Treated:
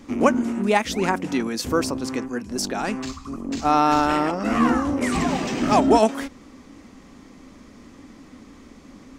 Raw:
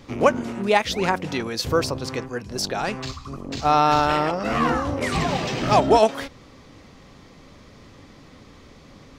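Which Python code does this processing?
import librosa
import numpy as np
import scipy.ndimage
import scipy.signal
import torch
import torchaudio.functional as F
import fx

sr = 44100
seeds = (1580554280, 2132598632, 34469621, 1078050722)

y = fx.graphic_eq(x, sr, hz=(125, 250, 500, 4000, 8000), db=(-10, 10, -4, -6, 5))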